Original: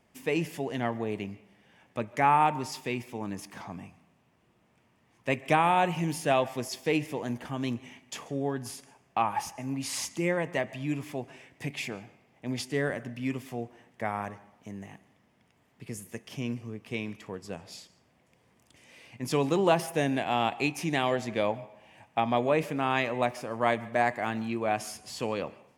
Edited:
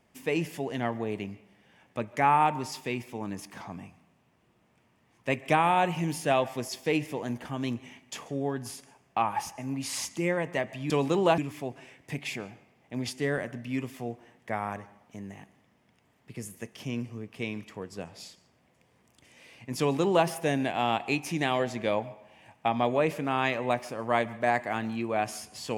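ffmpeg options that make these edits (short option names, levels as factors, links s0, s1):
-filter_complex "[0:a]asplit=3[s0][s1][s2];[s0]atrim=end=10.902[s3];[s1]atrim=start=19.308:end=19.792[s4];[s2]atrim=start=10.898[s5];[s3][s4]acrossfade=d=0.004:c1=hsin:c2=hsin[s6];[s6][s5]acrossfade=d=0.004:c1=hsin:c2=hsin"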